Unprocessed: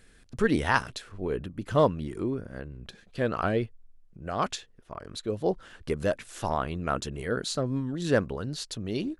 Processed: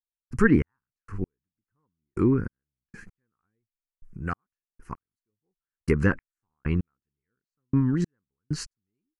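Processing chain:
de-essing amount 75%
treble cut that deepens with the level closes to 2,100 Hz, closed at −23.5 dBFS
phaser with its sweep stopped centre 1,500 Hz, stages 4
in parallel at +2 dB: speech leveller 2 s
on the sum: gate pattern "..xx...x...." 97 BPM −60 dB
level +3 dB

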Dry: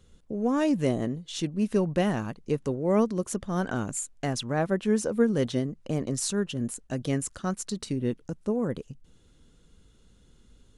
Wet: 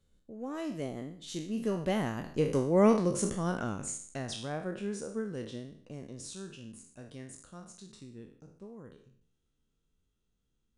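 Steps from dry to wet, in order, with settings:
peak hold with a decay on every bin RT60 0.55 s
source passing by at 0:02.78, 18 m/s, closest 9 metres

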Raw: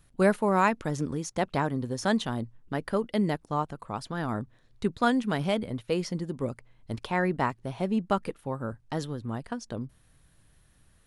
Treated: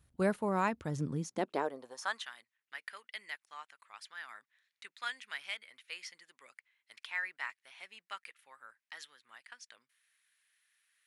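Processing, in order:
high-pass filter sweep 65 Hz → 2,000 Hz, 0:00.76–0:02.33
level −8.5 dB

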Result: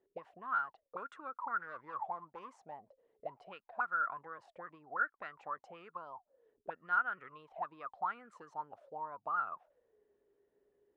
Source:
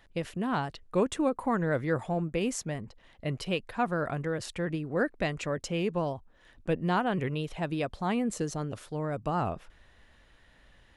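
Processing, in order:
0:01.60–0:03.45: gain into a clipping stage and back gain 26.5 dB
envelope filter 390–1,400 Hz, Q 21, up, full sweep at −25.5 dBFS
level +10 dB

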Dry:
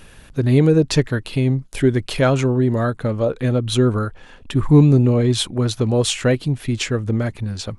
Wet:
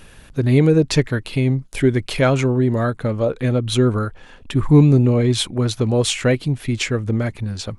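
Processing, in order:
dynamic equaliser 2,200 Hz, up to +5 dB, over −46 dBFS, Q 5.6

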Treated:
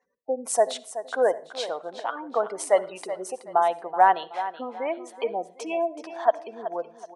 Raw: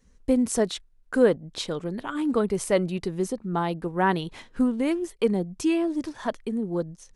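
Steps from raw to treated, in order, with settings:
gate on every frequency bin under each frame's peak −30 dB strong
low-pass that shuts in the quiet parts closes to 2,900 Hz, open at −20 dBFS
high-pass with resonance 710 Hz, resonance Q 4.9
parametric band 9,500 Hz +6.5 dB 0.47 octaves
repeating echo 376 ms, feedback 31%, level −12.5 dB
on a send at −18.5 dB: convolution reverb RT60 0.45 s, pre-delay 57 ms
on the sum: level −1.5 dB

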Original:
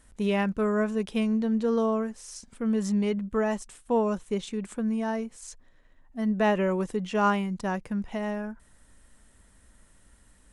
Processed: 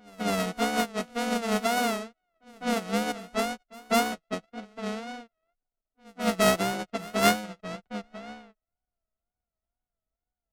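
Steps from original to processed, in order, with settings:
samples sorted by size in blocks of 64 samples
tape wow and flutter 120 cents
in parallel at −6.5 dB: log-companded quantiser 4 bits
on the sum: low-pass that shuts in the quiet parts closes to 1,300 Hz, open at −17 dBFS
on a send: backwards echo 203 ms −9.5 dB
on the sum: expander for the loud parts 2.5 to 1, over −41 dBFS

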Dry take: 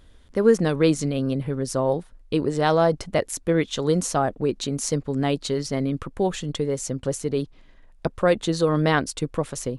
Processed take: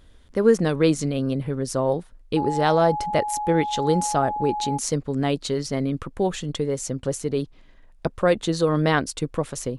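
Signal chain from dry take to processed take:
0:02.36–0:04.77: steady tone 840 Hz −25 dBFS

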